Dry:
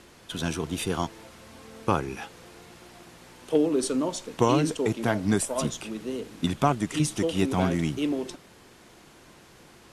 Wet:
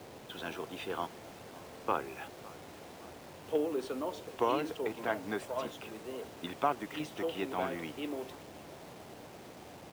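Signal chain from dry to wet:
three-way crossover with the lows and the highs turned down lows −19 dB, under 340 Hz, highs −23 dB, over 3,700 Hz
on a send: repeating echo 562 ms, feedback 58%, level −21 dB
on the sum: noise in a band 74–800 Hz −46 dBFS
bit reduction 8 bits
level −5.5 dB

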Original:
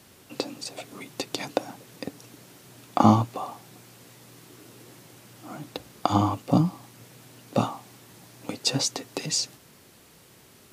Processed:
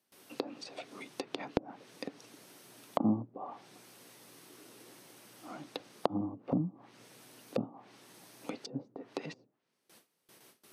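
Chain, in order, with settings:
high-pass filter 230 Hz 12 dB per octave
treble cut that deepens with the level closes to 300 Hz, closed at −24.5 dBFS
notch filter 7,200 Hz, Q 8.1
noise gate with hold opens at −44 dBFS
high-shelf EQ 11,000 Hz +7 dB
level −5 dB

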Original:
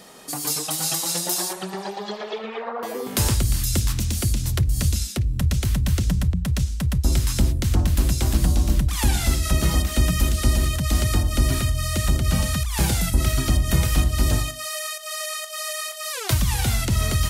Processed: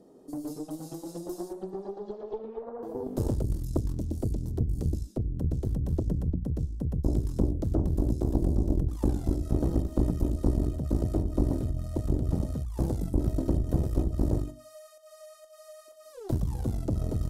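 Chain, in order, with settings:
drawn EQ curve 210 Hz 0 dB, 300 Hz +11 dB, 2,300 Hz −27 dB, 5,400 Hz −19 dB
harmonic generator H 4 −11 dB, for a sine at −5.5 dBFS
level −8.5 dB

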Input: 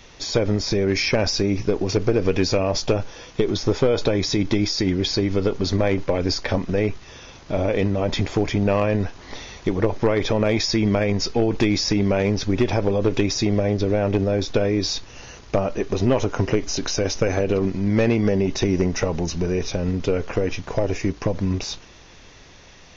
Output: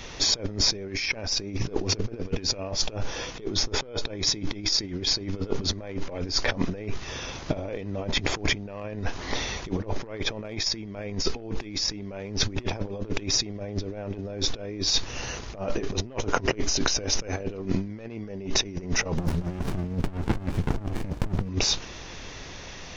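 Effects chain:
compressor whose output falls as the input rises −27 dBFS, ratio −0.5
0:19.17–0:21.49: windowed peak hold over 65 samples

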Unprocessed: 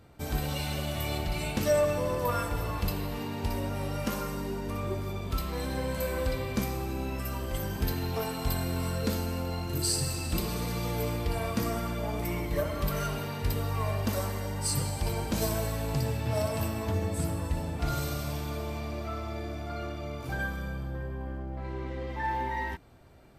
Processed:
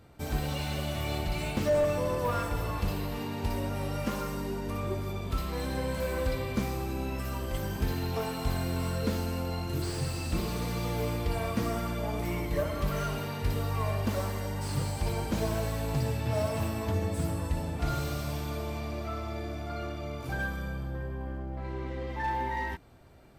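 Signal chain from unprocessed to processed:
slew-rate limiting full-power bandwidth 49 Hz

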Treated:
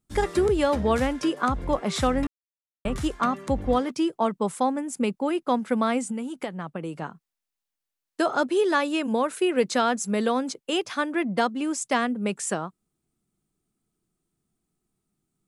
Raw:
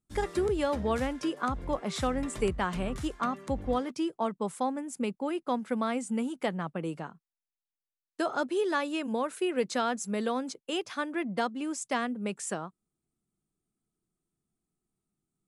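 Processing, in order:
0:02.27–0:02.85: silence
0:06.04–0:07.02: downward compressor 6 to 1, threshold −35 dBFS, peak gain reduction 10.5 dB
level +6.5 dB

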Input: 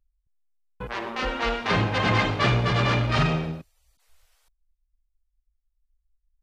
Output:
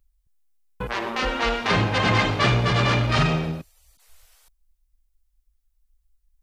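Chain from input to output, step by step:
high-shelf EQ 6,400 Hz +7 dB
in parallel at 0 dB: downward compressor, threshold −33 dBFS, peak gain reduction 15 dB

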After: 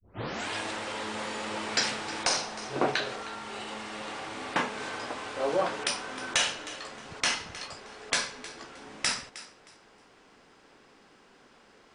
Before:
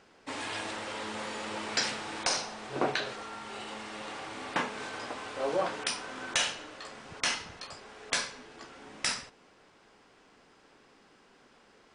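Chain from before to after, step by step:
turntable start at the beginning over 0.49 s
feedback echo with a high-pass in the loop 312 ms, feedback 24%, level −16 dB
level +2.5 dB

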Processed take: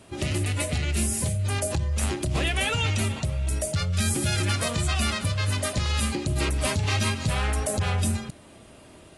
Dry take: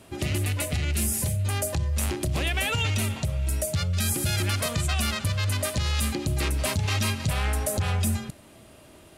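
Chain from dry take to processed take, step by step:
AAC 32 kbit/s 24,000 Hz

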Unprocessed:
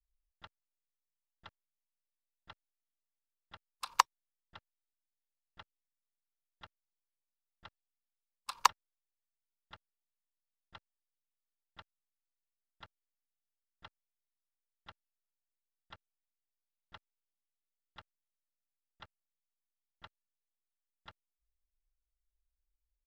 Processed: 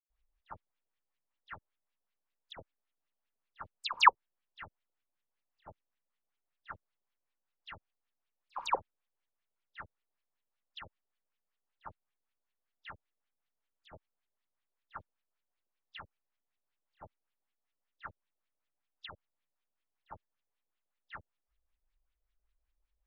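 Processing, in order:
auto-filter low-pass saw up 5.2 Hz 510–3,900 Hz
all-pass dispersion lows, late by 94 ms, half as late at 2,100 Hz
level +4.5 dB

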